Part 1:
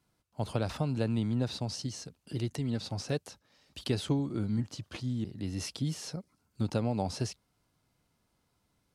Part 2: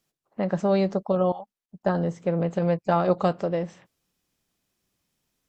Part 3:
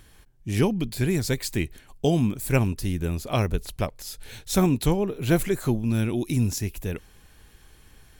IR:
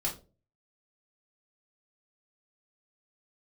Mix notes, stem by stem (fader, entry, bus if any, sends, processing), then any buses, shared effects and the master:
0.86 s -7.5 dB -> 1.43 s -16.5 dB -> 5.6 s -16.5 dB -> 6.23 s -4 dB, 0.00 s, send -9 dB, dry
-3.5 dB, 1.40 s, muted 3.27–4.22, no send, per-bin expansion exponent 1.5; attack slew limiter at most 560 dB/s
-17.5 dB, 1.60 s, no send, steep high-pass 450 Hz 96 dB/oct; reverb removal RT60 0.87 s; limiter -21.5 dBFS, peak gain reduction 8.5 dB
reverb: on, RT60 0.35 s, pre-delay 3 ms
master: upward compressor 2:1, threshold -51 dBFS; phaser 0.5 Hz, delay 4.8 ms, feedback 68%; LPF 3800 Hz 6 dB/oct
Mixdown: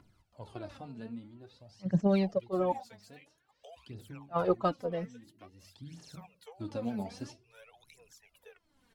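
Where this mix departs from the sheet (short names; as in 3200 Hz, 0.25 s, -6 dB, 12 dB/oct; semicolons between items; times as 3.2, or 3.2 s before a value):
stem 1 -7.5 dB -> -15.5 dB; stem 3 -17.5 dB -> -23.5 dB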